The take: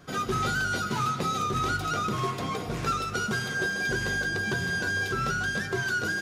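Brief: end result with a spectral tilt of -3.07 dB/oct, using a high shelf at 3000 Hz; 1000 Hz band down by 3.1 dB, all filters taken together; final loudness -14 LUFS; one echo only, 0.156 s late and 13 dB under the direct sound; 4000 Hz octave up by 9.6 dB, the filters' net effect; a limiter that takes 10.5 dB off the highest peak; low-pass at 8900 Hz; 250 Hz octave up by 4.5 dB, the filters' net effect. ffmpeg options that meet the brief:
-af "lowpass=8.9k,equalizer=f=250:t=o:g=6.5,equalizer=f=1k:t=o:g=-7,highshelf=f=3k:g=5,equalizer=f=4k:t=o:g=8.5,alimiter=limit=-23.5dB:level=0:latency=1,aecho=1:1:156:0.224,volume=17dB"

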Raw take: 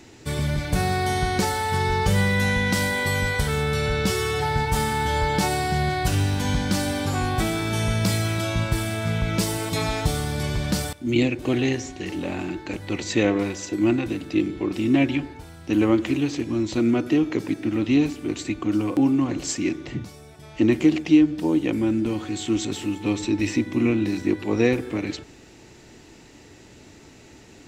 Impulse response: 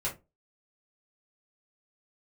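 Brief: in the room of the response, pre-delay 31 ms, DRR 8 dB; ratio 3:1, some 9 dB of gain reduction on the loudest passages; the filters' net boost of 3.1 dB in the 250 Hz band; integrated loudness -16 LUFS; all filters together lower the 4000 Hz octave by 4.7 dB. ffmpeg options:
-filter_complex "[0:a]equalizer=f=250:t=o:g=4,equalizer=f=4k:t=o:g=-6,acompressor=threshold=-21dB:ratio=3,asplit=2[a][b];[1:a]atrim=start_sample=2205,adelay=31[c];[b][c]afir=irnorm=-1:irlink=0,volume=-13dB[d];[a][d]amix=inputs=2:normalize=0,volume=9dB"

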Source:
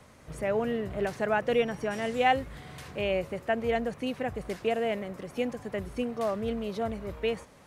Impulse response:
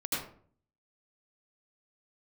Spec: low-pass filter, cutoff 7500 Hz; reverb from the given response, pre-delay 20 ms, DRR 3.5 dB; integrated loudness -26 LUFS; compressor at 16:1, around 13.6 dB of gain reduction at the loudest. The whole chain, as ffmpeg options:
-filter_complex "[0:a]lowpass=7.5k,acompressor=threshold=-33dB:ratio=16,asplit=2[a][b];[1:a]atrim=start_sample=2205,adelay=20[c];[b][c]afir=irnorm=-1:irlink=0,volume=-9dB[d];[a][d]amix=inputs=2:normalize=0,volume=11dB"

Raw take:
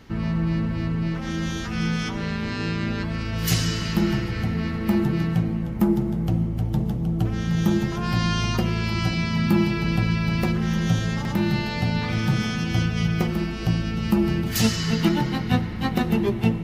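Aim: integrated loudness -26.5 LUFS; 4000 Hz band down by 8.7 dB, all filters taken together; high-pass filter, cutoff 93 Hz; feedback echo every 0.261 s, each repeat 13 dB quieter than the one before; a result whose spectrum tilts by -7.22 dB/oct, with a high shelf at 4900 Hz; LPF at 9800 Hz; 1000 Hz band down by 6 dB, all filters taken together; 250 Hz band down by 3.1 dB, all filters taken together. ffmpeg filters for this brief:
-af "highpass=93,lowpass=9.8k,equalizer=f=250:t=o:g=-4,equalizer=f=1k:t=o:g=-7,equalizer=f=4k:t=o:g=-8.5,highshelf=f=4.9k:g=-6.5,aecho=1:1:261|522|783:0.224|0.0493|0.0108"

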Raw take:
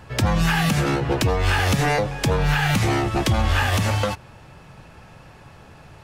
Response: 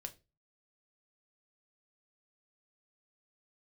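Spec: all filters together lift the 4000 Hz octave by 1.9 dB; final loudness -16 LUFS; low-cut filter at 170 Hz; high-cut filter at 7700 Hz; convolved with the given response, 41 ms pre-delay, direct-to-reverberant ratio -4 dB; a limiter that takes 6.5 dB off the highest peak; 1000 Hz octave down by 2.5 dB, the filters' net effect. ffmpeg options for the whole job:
-filter_complex "[0:a]highpass=170,lowpass=7.7k,equalizer=f=1k:t=o:g=-3.5,equalizer=f=4k:t=o:g=3,alimiter=limit=-15.5dB:level=0:latency=1,asplit=2[a][b];[1:a]atrim=start_sample=2205,adelay=41[c];[b][c]afir=irnorm=-1:irlink=0,volume=8dB[d];[a][d]amix=inputs=2:normalize=0,volume=2.5dB"

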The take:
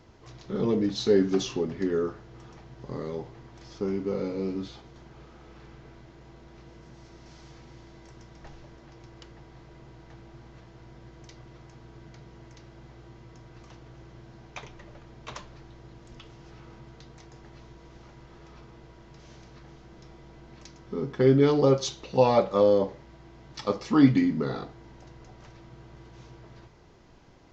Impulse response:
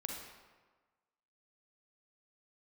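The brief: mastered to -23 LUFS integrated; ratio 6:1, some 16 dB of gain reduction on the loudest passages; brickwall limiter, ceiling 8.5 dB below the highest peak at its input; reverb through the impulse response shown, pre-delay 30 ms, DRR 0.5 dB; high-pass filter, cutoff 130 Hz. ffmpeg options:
-filter_complex "[0:a]highpass=130,acompressor=threshold=-31dB:ratio=6,alimiter=level_in=2.5dB:limit=-24dB:level=0:latency=1,volume=-2.5dB,asplit=2[a][b];[1:a]atrim=start_sample=2205,adelay=30[c];[b][c]afir=irnorm=-1:irlink=0,volume=-0.5dB[d];[a][d]amix=inputs=2:normalize=0,volume=16.5dB"

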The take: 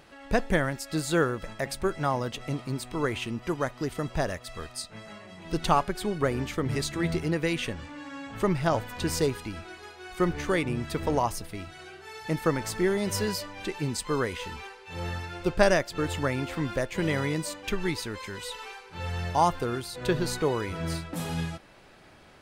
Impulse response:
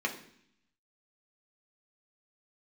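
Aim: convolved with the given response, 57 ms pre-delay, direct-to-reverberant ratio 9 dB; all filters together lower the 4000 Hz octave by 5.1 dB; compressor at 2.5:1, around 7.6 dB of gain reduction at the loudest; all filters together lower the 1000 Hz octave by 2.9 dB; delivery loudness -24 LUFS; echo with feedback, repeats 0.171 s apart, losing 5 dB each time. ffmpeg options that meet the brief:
-filter_complex "[0:a]equalizer=f=1k:t=o:g=-3.5,equalizer=f=4k:t=o:g=-6.5,acompressor=threshold=-28dB:ratio=2.5,aecho=1:1:171|342|513|684|855|1026|1197:0.562|0.315|0.176|0.0988|0.0553|0.031|0.0173,asplit=2[a][b];[1:a]atrim=start_sample=2205,adelay=57[c];[b][c]afir=irnorm=-1:irlink=0,volume=-16dB[d];[a][d]amix=inputs=2:normalize=0,volume=8dB"

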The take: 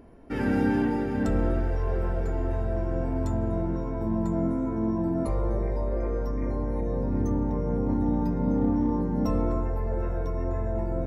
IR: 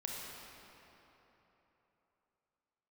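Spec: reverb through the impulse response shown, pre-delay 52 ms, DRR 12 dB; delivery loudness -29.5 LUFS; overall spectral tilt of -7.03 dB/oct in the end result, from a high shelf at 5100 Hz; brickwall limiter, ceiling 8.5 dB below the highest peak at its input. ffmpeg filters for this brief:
-filter_complex "[0:a]highshelf=f=5.1k:g=7.5,alimiter=limit=-20.5dB:level=0:latency=1,asplit=2[a][b];[1:a]atrim=start_sample=2205,adelay=52[c];[b][c]afir=irnorm=-1:irlink=0,volume=-13dB[d];[a][d]amix=inputs=2:normalize=0,volume=0.5dB"

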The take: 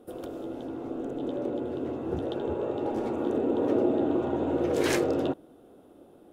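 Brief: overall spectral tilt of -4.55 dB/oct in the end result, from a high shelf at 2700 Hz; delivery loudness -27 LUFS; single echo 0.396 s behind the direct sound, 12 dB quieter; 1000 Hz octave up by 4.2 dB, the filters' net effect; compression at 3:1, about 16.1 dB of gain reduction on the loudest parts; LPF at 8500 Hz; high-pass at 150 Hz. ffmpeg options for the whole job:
-af "highpass=150,lowpass=8.5k,equalizer=f=1k:t=o:g=5,highshelf=f=2.7k:g=6,acompressor=threshold=-43dB:ratio=3,aecho=1:1:396:0.251,volume=15dB"

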